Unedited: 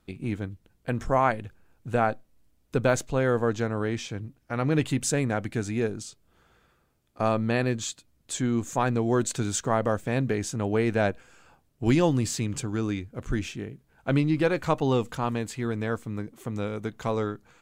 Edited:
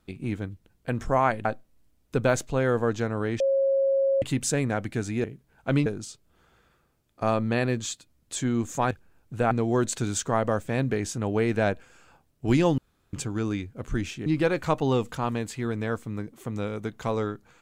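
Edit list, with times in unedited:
1.45–2.05 move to 8.89
4–4.82 bleep 544 Hz -19.5 dBFS
12.16–12.51 room tone
13.64–14.26 move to 5.84

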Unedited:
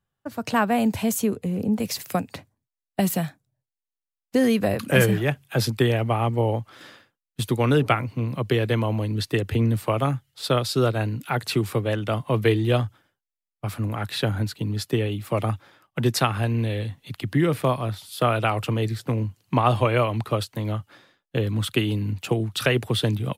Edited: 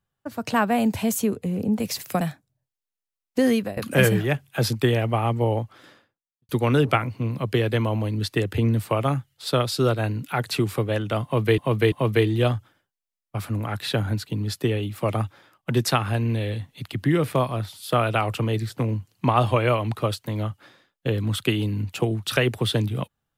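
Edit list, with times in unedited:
2.21–3.18 cut
4.49–4.74 fade out, to -19.5 dB
6.48–7.46 studio fade out
12.21–12.55 loop, 3 plays

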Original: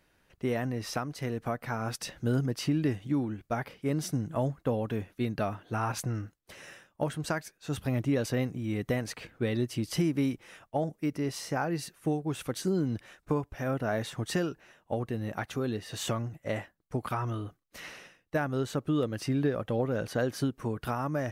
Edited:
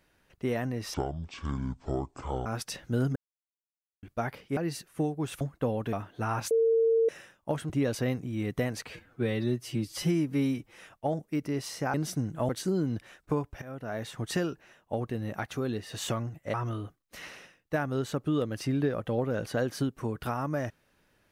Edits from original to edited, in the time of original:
0.94–1.79 speed 56%
2.49–3.36 mute
3.9–4.45 swap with 11.64–12.48
4.97–5.45 cut
6.03–6.61 bleep 454 Hz -20.5 dBFS
7.22–8.01 cut
9.21–10.43 stretch 1.5×
13.61–14.29 fade in linear, from -15 dB
16.53–17.15 cut

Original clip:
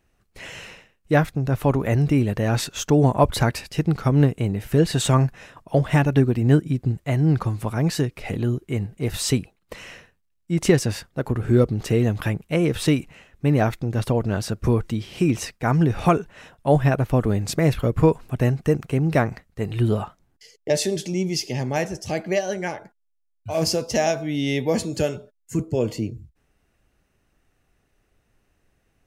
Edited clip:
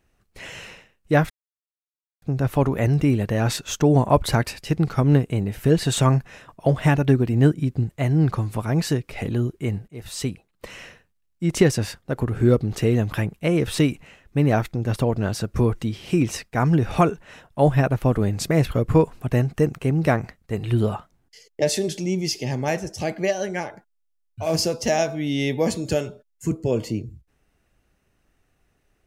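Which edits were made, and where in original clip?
1.3 insert silence 0.92 s
8.96–9.79 fade in, from -16.5 dB

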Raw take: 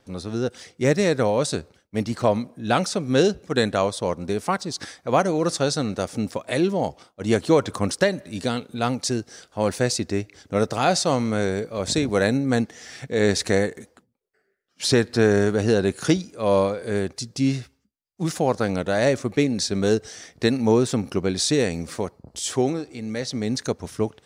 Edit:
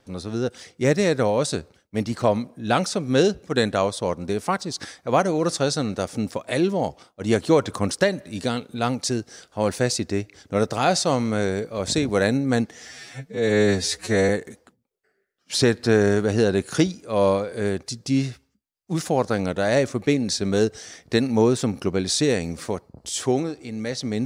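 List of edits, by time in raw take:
12.89–13.59 stretch 2×

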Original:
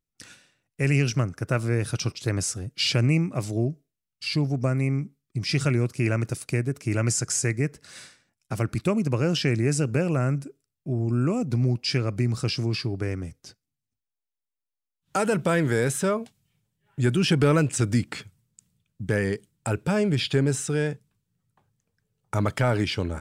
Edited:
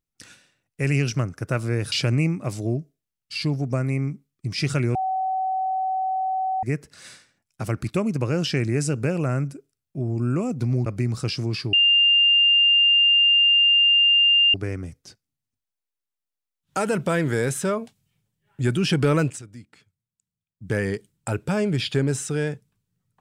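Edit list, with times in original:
1.92–2.83 cut
5.86–7.54 bleep 757 Hz -21.5 dBFS
11.77–12.06 cut
12.93 add tone 2800 Hz -13.5 dBFS 2.81 s
17.66–19.11 dip -19.5 dB, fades 0.15 s

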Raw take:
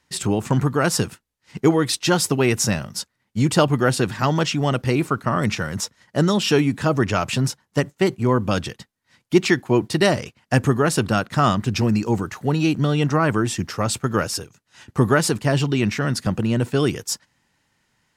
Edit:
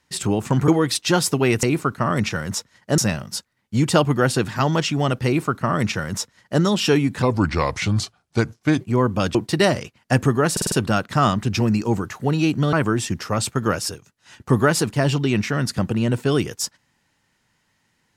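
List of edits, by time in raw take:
0.68–1.66 cut
4.89–6.24 copy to 2.61
6.85–8.12 speed 80%
8.66–9.76 cut
10.93 stutter 0.05 s, 5 plays
12.94–13.21 cut

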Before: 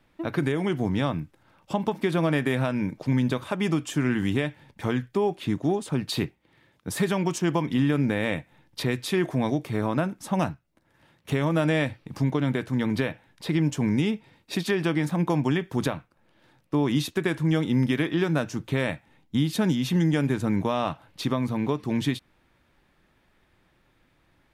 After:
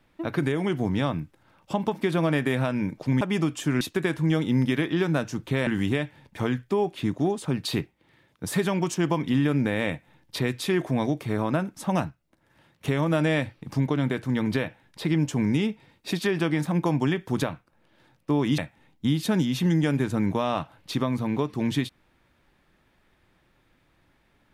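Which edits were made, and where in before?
3.21–3.51 cut
17.02–18.88 move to 4.11

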